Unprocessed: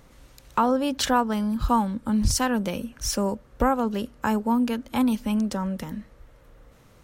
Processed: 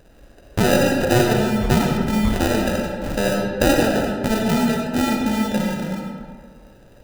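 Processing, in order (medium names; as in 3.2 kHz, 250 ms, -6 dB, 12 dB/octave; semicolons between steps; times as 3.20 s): peaking EQ 670 Hz +8 dB 0.98 oct; sample-rate reducer 1.1 kHz, jitter 0%; algorithmic reverb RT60 1.8 s, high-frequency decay 0.5×, pre-delay 25 ms, DRR 0 dB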